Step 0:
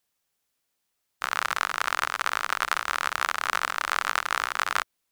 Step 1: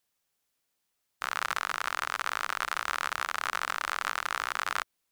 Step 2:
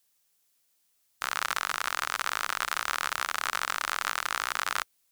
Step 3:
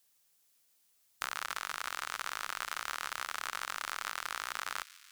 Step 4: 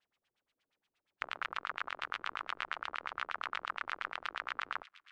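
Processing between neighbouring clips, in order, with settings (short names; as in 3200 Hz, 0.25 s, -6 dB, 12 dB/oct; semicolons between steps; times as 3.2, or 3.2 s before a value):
limiter -11 dBFS, peak gain reduction 6.5 dB; gain -1.5 dB
high shelf 3500 Hz +10 dB; modulation noise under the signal 33 dB; soft clip -8 dBFS, distortion -18 dB
compressor 4:1, threshold -33 dBFS, peak gain reduction 9 dB; thin delay 0.144 s, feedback 74%, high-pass 2700 Hz, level -14 dB
LFO low-pass sine 8.5 Hz 300–3300 Hz; gain -2 dB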